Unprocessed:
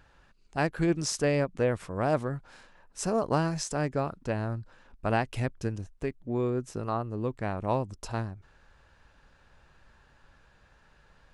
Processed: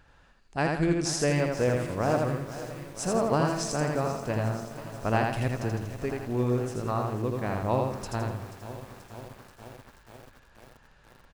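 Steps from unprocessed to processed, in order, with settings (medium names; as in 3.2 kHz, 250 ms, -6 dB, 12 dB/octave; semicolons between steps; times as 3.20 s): feedback delay 82 ms, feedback 39%, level -3 dB; bit-crushed delay 483 ms, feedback 80%, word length 7-bit, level -14 dB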